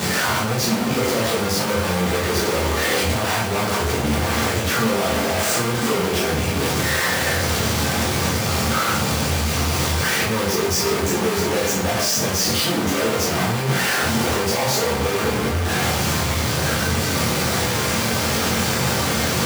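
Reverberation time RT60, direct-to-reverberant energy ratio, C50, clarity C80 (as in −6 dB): 0.50 s, −5.0 dB, 5.0 dB, 9.0 dB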